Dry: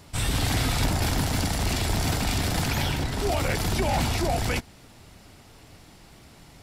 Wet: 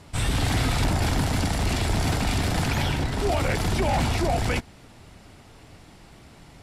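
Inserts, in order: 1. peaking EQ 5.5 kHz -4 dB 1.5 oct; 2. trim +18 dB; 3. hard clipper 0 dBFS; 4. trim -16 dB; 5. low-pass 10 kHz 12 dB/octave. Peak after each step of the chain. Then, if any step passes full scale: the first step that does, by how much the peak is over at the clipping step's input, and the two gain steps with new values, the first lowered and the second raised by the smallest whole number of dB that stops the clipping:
-12.0 dBFS, +6.0 dBFS, 0.0 dBFS, -16.0 dBFS, -15.5 dBFS; step 2, 6.0 dB; step 2 +12 dB, step 4 -10 dB

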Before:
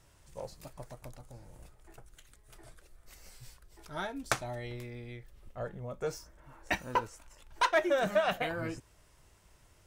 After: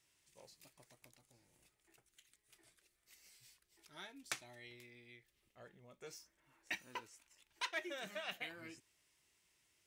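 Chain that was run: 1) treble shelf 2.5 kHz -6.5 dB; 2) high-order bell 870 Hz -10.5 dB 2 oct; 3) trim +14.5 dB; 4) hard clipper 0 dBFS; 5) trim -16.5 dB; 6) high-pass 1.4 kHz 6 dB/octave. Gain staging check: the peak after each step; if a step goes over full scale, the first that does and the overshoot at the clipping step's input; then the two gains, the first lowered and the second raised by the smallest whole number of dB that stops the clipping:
-14.5 dBFS, -19.5 dBFS, -5.0 dBFS, -5.0 dBFS, -21.5 dBFS, -23.0 dBFS; nothing clips

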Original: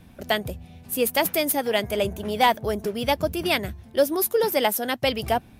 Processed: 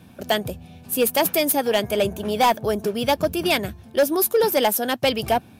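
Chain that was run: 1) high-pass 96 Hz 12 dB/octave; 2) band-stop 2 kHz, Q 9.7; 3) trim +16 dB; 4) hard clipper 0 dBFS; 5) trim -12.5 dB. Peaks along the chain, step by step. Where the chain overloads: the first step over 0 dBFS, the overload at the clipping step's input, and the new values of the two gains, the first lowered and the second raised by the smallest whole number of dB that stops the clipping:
-8.0 dBFS, -8.5 dBFS, +7.5 dBFS, 0.0 dBFS, -12.5 dBFS; step 3, 7.5 dB; step 3 +8 dB, step 5 -4.5 dB

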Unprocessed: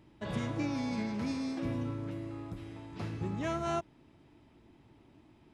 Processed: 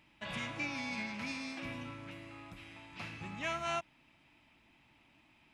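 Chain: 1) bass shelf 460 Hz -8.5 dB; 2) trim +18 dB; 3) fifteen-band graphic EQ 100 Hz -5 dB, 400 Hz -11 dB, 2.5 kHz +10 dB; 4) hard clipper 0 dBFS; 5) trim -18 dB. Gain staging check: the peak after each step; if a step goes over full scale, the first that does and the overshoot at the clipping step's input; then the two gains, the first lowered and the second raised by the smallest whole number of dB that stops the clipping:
-25.0 dBFS, -7.0 dBFS, -5.5 dBFS, -5.5 dBFS, -23.5 dBFS; nothing clips

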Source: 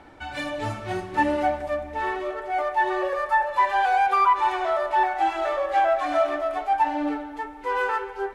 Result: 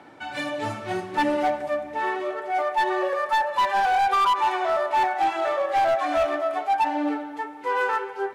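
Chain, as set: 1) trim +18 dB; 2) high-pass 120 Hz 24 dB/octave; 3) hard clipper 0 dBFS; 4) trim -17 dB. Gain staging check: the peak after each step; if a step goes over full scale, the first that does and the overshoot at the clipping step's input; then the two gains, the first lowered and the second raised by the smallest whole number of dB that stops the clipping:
+8.5 dBFS, +8.5 dBFS, 0.0 dBFS, -17.0 dBFS; step 1, 8.5 dB; step 1 +9 dB, step 4 -8 dB

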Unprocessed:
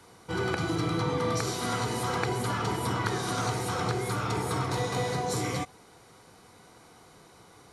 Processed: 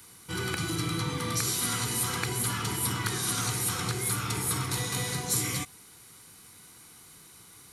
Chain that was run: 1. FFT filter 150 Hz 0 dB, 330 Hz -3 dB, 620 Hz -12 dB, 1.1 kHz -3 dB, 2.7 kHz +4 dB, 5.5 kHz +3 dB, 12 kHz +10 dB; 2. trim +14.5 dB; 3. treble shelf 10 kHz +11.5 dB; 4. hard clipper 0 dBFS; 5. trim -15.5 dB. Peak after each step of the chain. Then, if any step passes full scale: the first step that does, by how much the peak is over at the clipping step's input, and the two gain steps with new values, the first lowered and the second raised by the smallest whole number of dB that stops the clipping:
-12.5 dBFS, +2.0 dBFS, +3.5 dBFS, 0.0 dBFS, -15.5 dBFS; step 2, 3.5 dB; step 2 +10.5 dB, step 5 -11.5 dB

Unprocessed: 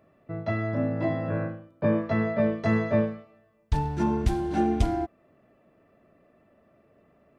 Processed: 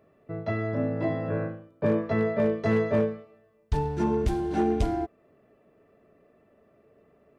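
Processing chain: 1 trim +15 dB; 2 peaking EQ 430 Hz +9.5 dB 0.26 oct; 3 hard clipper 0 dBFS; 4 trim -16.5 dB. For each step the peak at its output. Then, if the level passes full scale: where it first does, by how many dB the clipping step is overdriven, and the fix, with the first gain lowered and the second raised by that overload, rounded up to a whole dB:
+5.0 dBFS, +4.5 dBFS, 0.0 dBFS, -16.5 dBFS; step 1, 4.5 dB; step 1 +10 dB, step 4 -11.5 dB

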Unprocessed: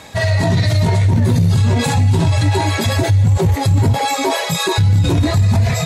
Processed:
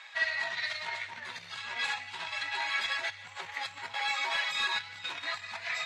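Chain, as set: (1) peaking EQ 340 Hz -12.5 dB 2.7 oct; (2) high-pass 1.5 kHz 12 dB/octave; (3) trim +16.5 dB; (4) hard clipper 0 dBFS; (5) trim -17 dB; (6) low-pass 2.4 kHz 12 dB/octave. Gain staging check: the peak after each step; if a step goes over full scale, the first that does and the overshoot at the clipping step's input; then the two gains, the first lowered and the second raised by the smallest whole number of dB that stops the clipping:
-9.0 dBFS, -10.0 dBFS, +6.5 dBFS, 0.0 dBFS, -17.0 dBFS, -19.0 dBFS; step 3, 6.5 dB; step 3 +9.5 dB, step 5 -10 dB

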